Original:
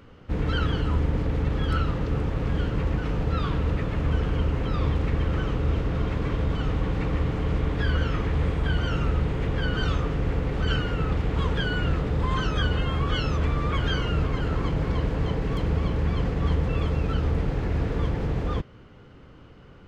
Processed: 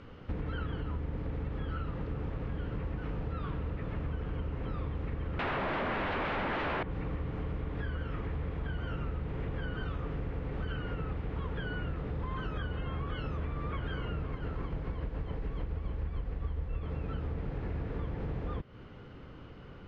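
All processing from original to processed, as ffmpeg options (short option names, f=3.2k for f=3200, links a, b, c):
-filter_complex "[0:a]asettb=1/sr,asplit=3[a][b][c];[a]atrim=end=5.394[d];[b]atrim=start=5.39:end=6.83,asetpts=PTS-STARTPTS,afade=t=in:d=0.004:c=qsin,afade=t=out:st=1.436:d=0.004:c=qsin,lowshelf=f=160:t=q:w=3:g=-7.5,aecho=1:1:1.2:0.49,atrim=end_sample=63504,aeval=exprs='0.178*sin(PI/2*10*val(0)/0.178)':c=same[e];[c]atrim=start=6.826[f];[d][e]acrossfade=d=0.004:c1=hsin:c2=qsin[g];[g][f]acrossfade=d=0.004:c1=qsin:c2=hsin,asettb=1/sr,asplit=3[h][i][j];[h]atrim=end=14.334[k];[i]atrim=start=14.33:end=16.83,asetpts=PTS-STARTPTS,afade=t=in:d=0.004:c=qsin,afade=t=out:st=2.496:d=0.004:c=qsin,asubboost=boost=5.5:cutoff=74,tremolo=f=7:d=0.41[l];[j]atrim=start=16.826[m];[k][l]acrossfade=d=0.004:c1=hsin:c2=qsin[n];[n][m]acrossfade=d=0.004:c1=qsin:c2=hsin,acrossover=split=2900[o][p];[p]acompressor=threshold=-57dB:ratio=4:attack=1:release=60[q];[o][q]amix=inputs=2:normalize=0,lowpass=4.7k,acompressor=threshold=-33dB:ratio=6"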